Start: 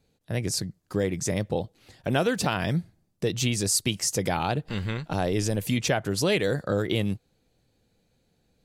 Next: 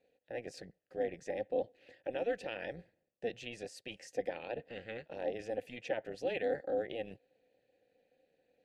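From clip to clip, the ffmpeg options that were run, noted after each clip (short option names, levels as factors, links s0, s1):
-filter_complex "[0:a]areverse,acompressor=threshold=0.0251:ratio=6,areverse,asplit=3[s0][s1][s2];[s0]bandpass=f=530:t=q:w=8,volume=1[s3];[s1]bandpass=f=1840:t=q:w=8,volume=0.501[s4];[s2]bandpass=f=2480:t=q:w=8,volume=0.355[s5];[s3][s4][s5]amix=inputs=3:normalize=0,tremolo=f=230:d=0.621,volume=3.35"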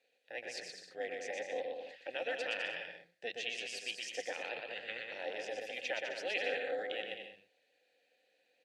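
-filter_complex "[0:a]bandpass=f=3800:t=q:w=0.61:csg=0,asplit=2[s0][s1];[s1]aecho=0:1:120|204|262.8|304|332.8:0.631|0.398|0.251|0.158|0.1[s2];[s0][s2]amix=inputs=2:normalize=0,volume=2.37"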